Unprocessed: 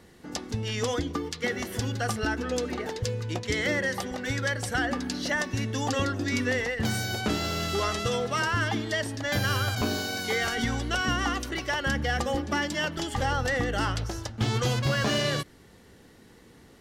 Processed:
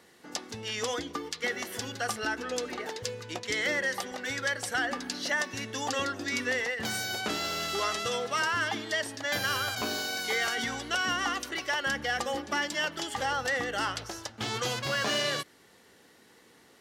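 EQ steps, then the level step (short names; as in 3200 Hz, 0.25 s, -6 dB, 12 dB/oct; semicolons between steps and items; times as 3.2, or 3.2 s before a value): HPF 610 Hz 6 dB/oct; 0.0 dB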